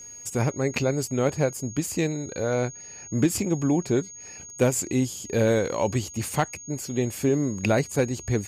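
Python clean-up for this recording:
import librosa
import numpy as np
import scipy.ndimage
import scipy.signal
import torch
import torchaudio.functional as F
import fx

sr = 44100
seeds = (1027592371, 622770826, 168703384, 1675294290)

y = fx.fix_declip(x, sr, threshold_db=-12.5)
y = fx.notch(y, sr, hz=6600.0, q=30.0)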